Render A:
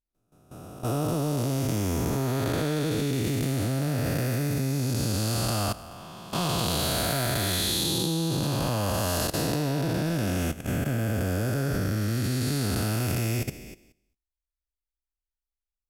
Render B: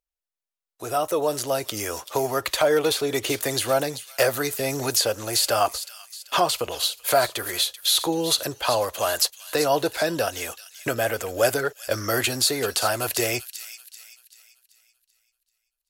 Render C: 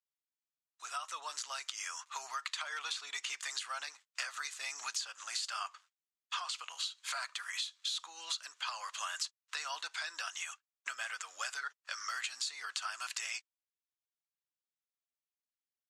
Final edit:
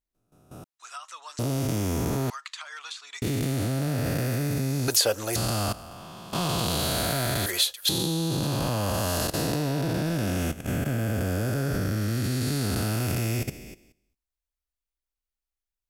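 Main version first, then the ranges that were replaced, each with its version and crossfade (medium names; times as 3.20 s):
A
0.64–1.39 s: from C
2.30–3.22 s: from C
4.88–5.36 s: from B
7.46–7.89 s: from B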